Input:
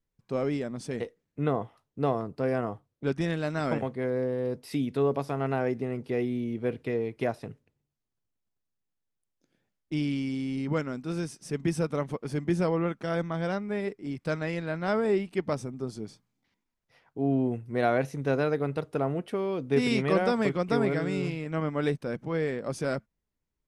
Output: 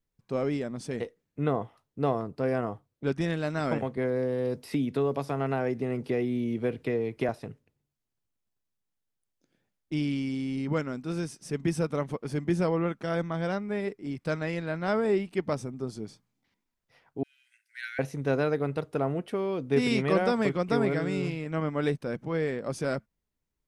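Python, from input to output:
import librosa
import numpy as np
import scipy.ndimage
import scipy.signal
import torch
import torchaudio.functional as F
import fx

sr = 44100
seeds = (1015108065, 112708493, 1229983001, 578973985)

y = fx.band_squash(x, sr, depth_pct=70, at=(3.97, 7.29))
y = fx.cheby_ripple_highpass(y, sr, hz=1500.0, ripple_db=3, at=(17.23, 17.99))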